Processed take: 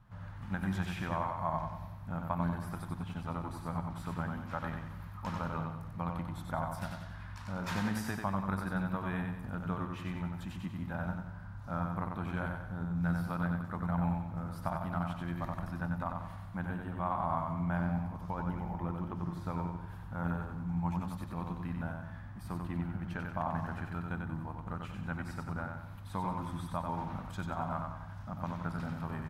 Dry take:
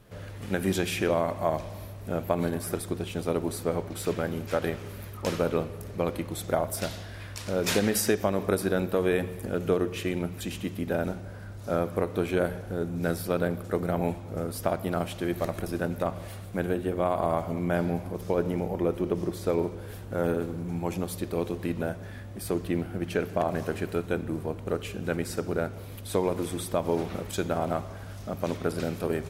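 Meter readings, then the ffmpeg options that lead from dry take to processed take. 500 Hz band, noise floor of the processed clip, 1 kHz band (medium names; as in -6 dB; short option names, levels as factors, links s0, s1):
-17.0 dB, -46 dBFS, -3.0 dB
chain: -af "firequalizer=gain_entry='entry(170,0);entry(410,-22);entry(900,3);entry(2300,-10);entry(8300,-18)':delay=0.05:min_phase=1,aecho=1:1:93|186|279|372|465:0.596|0.256|0.11|0.0474|0.0204,volume=0.668"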